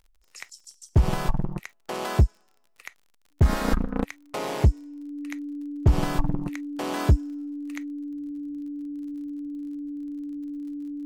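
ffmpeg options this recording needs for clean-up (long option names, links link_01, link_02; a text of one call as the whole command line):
ffmpeg -i in.wav -af "adeclick=threshold=4,bandreject=frequency=290:width=30" out.wav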